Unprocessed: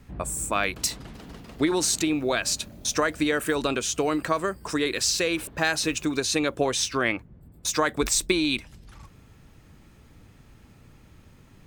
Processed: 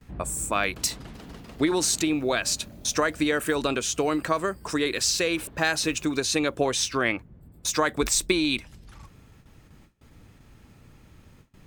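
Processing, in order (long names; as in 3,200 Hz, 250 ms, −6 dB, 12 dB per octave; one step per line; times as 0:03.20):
noise gate with hold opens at −43 dBFS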